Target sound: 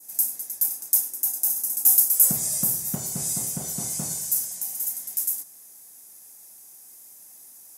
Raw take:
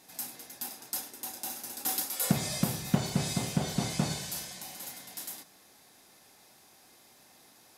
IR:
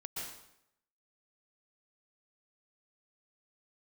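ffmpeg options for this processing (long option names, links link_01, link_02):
-af "aexciter=amount=11.4:drive=2.4:freq=5900,adynamicequalizer=threshold=0.0112:dfrequency=2700:dqfactor=1.1:tfrequency=2700:tqfactor=1.1:attack=5:release=100:ratio=0.375:range=2.5:mode=cutabove:tftype=bell,volume=-5.5dB"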